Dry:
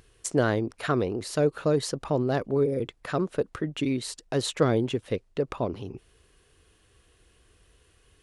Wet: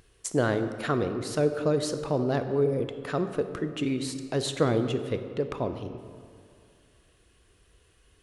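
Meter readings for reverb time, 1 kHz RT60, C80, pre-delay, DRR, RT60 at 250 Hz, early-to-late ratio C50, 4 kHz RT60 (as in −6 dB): 2.3 s, 2.2 s, 10.5 dB, 20 ms, 8.5 dB, 2.3 s, 9.5 dB, 1.3 s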